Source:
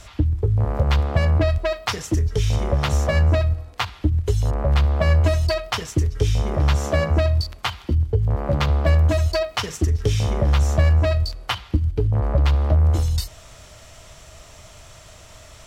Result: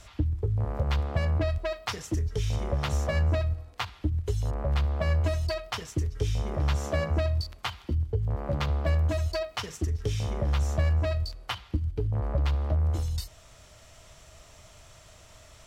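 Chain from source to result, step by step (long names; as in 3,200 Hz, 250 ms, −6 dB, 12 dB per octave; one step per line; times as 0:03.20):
speech leveller 2 s
level −9 dB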